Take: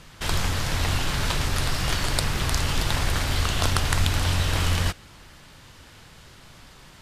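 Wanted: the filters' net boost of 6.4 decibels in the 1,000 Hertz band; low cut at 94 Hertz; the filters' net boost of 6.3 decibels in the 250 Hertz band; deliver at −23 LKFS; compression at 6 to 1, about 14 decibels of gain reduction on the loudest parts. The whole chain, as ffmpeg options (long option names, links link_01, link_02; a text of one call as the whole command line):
ffmpeg -i in.wav -af "highpass=94,equalizer=frequency=250:width_type=o:gain=8.5,equalizer=frequency=1000:width_type=o:gain=7.5,acompressor=threshold=-33dB:ratio=6,volume=13.5dB" out.wav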